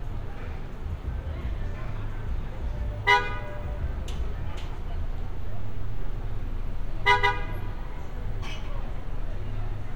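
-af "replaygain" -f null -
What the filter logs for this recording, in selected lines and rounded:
track_gain = +16.1 dB
track_peak = 0.318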